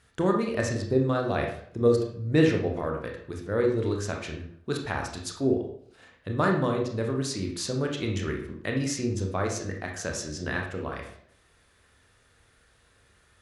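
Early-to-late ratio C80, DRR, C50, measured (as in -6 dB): 9.5 dB, 1.0 dB, 5.5 dB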